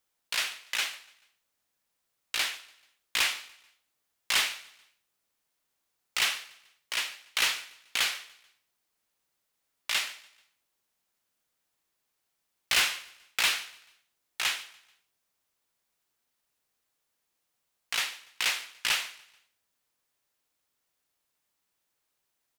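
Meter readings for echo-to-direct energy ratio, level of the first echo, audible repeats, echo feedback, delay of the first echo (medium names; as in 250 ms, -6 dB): -21.0 dB, -22.0 dB, 2, 42%, 145 ms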